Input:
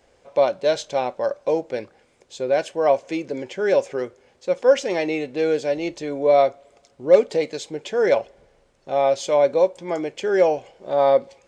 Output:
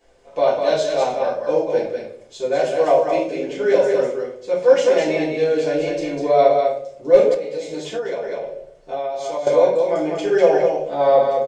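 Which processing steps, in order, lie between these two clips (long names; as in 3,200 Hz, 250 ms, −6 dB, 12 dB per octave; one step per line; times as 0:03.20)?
single-tap delay 199 ms −4.5 dB
convolution reverb RT60 0.60 s, pre-delay 3 ms, DRR −8 dB
0:07.34–0:09.47: downward compressor 12 to 1, threshold −15 dBFS, peak gain reduction 13.5 dB
level −7 dB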